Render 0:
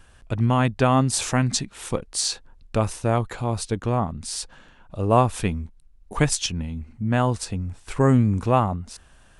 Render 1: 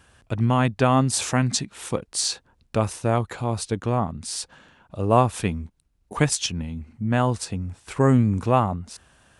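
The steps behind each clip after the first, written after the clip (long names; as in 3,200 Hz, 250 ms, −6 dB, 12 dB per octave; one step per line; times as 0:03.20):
high-pass filter 74 Hz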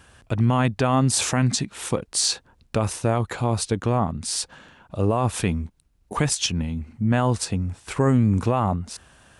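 brickwall limiter −15.5 dBFS, peak gain reduction 11.5 dB
level +4 dB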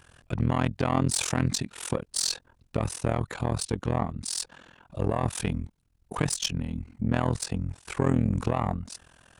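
one-sided soft clipper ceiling −14 dBFS
amplitude modulation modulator 42 Hz, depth 95%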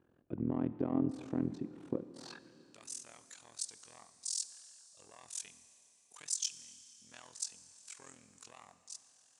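band-pass filter sweep 310 Hz → 6,800 Hz, 0:02.07–0:02.70
four-comb reverb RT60 3.3 s, combs from 26 ms, DRR 13 dB
level −1.5 dB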